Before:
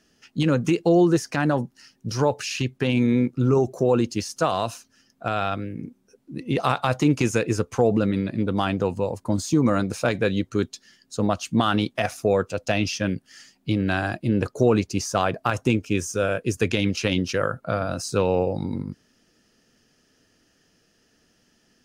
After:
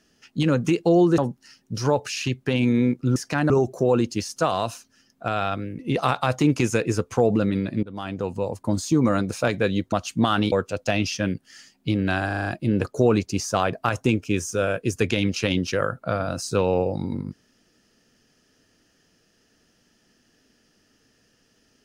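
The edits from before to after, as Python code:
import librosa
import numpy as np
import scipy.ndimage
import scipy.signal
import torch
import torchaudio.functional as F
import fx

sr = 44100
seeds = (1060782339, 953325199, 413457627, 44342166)

y = fx.edit(x, sr, fx.move(start_s=1.18, length_s=0.34, to_s=3.5),
    fx.cut(start_s=5.79, length_s=0.61),
    fx.fade_in_from(start_s=8.44, length_s=0.72, floor_db=-18.0),
    fx.cut(start_s=10.53, length_s=0.75),
    fx.cut(start_s=11.88, length_s=0.45),
    fx.stutter(start_s=14.07, slice_s=0.04, count=6), tone=tone)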